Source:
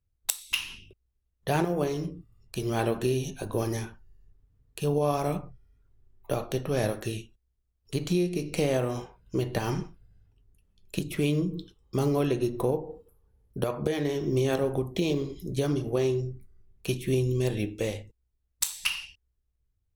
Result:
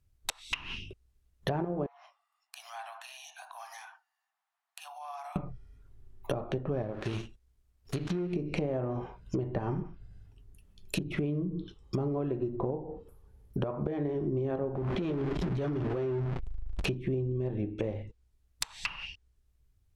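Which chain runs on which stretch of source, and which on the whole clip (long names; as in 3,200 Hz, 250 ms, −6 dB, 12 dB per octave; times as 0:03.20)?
0:01.86–0:05.36: Butterworth high-pass 690 Hz 96 dB per octave + high-shelf EQ 2,800 Hz −11 dB + downward compressor 2.5 to 1, threshold −55 dBFS
0:06.82–0:08.33: gap after every zero crossing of 0.19 ms + downward compressor 1.5 to 1, threshold −41 dBFS
0:14.75–0:16.89: converter with a step at zero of −28.5 dBFS + downward compressor 8 to 1, threshold −28 dBFS + saturating transformer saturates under 180 Hz
whole clip: treble cut that deepens with the level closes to 1,100 Hz, closed at −27 dBFS; notch filter 480 Hz, Q 12; downward compressor 6 to 1, threshold −37 dBFS; level +7.5 dB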